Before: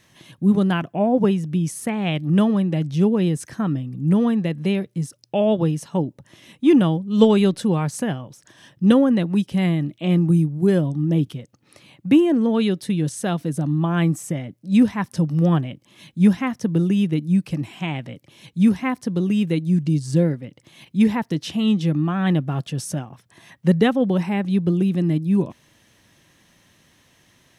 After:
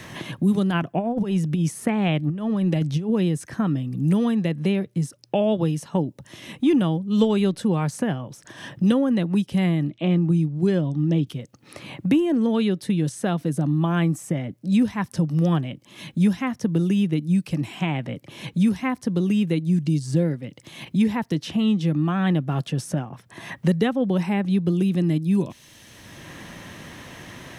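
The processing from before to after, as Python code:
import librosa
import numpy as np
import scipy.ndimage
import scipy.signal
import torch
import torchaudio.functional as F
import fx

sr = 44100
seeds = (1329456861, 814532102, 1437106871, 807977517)

y = fx.over_compress(x, sr, threshold_db=-21.0, ratio=-0.5, at=(0.7, 3.1))
y = fx.air_absorb(y, sr, metres=100.0, at=(9.89, 11.27))
y = fx.band_squash(y, sr, depth_pct=70)
y = F.gain(torch.from_numpy(y), -2.0).numpy()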